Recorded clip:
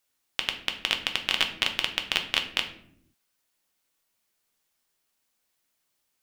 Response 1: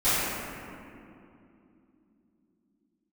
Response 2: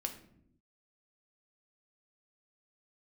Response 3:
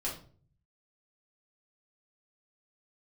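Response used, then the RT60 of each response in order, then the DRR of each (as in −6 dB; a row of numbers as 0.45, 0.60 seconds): 2; 2.8, 0.75, 0.45 seconds; −19.0, 4.0, −6.0 decibels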